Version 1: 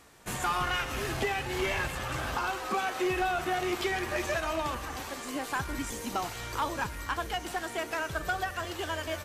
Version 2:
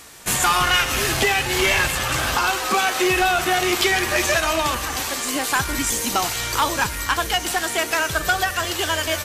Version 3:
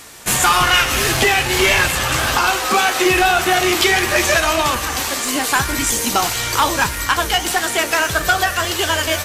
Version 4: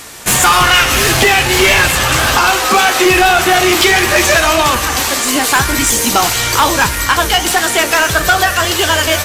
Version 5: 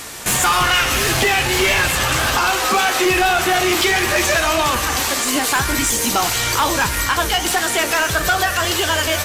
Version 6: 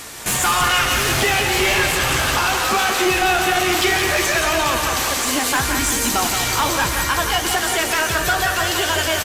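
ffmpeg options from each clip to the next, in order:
-af "highshelf=f=2.2k:g=10.5,volume=8.5dB"
-af "flanger=delay=6.9:depth=8.4:regen=-66:speed=1.7:shape=triangular,volume=8.5dB"
-af "asoftclip=type=tanh:threshold=-10dB,volume=7dB"
-af "alimiter=limit=-10dB:level=0:latency=1:release=265"
-af "aecho=1:1:174|348|522|696|870|1044|1218|1392:0.501|0.296|0.174|0.103|0.0607|0.0358|0.0211|0.0125,volume=-2.5dB"

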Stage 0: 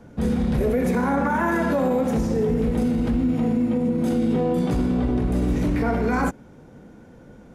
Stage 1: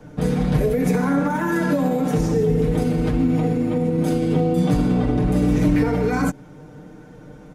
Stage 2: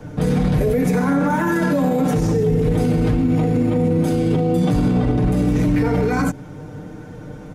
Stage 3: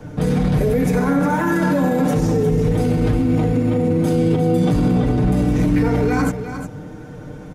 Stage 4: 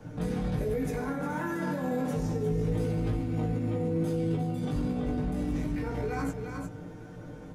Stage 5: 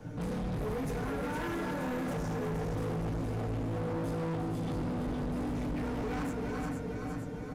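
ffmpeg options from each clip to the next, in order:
-filter_complex "[0:a]aecho=1:1:6.6:0.84,acrossover=split=370|3000[a][b][c];[b]acompressor=threshold=-27dB:ratio=6[d];[a][d][c]amix=inputs=3:normalize=0,volume=2.5dB"
-af "equalizer=f=98:w=3.6:g=10.5,alimiter=limit=-16.5dB:level=0:latency=1:release=31,volume=6dB"
-af "aecho=1:1:356:0.335"
-af "alimiter=limit=-14dB:level=0:latency=1:release=138,flanger=delay=17.5:depth=2.5:speed=0.29,volume=-6dB"
-af "aecho=1:1:466|932|1398|1864|2330|2796|3262:0.562|0.309|0.17|0.0936|0.0515|0.0283|0.0156,volume=32dB,asoftclip=hard,volume=-32dB"

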